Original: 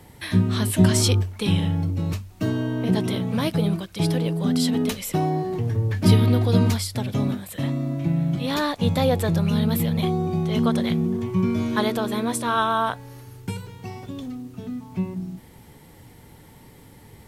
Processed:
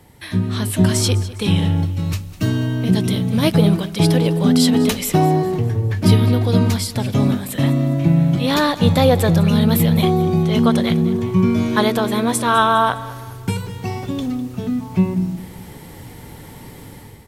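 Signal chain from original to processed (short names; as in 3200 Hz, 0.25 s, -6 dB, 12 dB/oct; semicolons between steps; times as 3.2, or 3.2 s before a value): 1.84–3.42 bell 350 Hz -> 1100 Hz -9.5 dB 2.9 oct; AGC gain up to 11.5 dB; feedback echo 0.203 s, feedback 43%, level -17 dB; gain -1 dB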